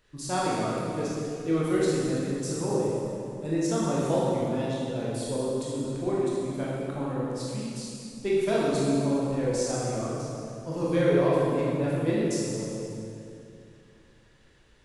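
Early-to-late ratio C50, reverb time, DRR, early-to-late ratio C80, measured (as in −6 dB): −3.0 dB, 2.5 s, −7.0 dB, −1.0 dB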